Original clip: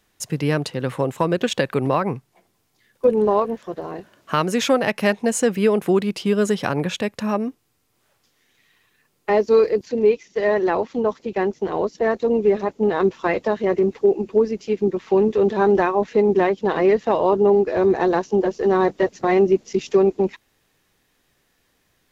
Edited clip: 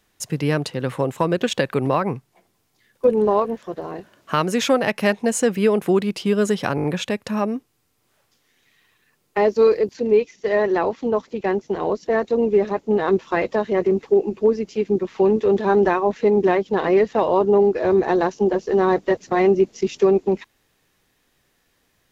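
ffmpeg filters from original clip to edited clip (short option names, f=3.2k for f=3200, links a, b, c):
-filter_complex "[0:a]asplit=5[a][b][c][d][e];[a]atrim=end=6.782[f];[b]atrim=start=6.758:end=6.782[g];[c]atrim=start=6.758:end=6.782[h];[d]atrim=start=6.758:end=6.782[i];[e]atrim=start=6.758[j];[f][g]acrossfade=d=0.004:c1=hsin:c2=hsin[k];[k][h]acrossfade=d=0.004:c1=hsin:c2=hsin[l];[l][i]acrossfade=d=0.004:c1=hsin:c2=hsin[m];[m][j]acrossfade=d=0.004:c1=hsin:c2=hsin"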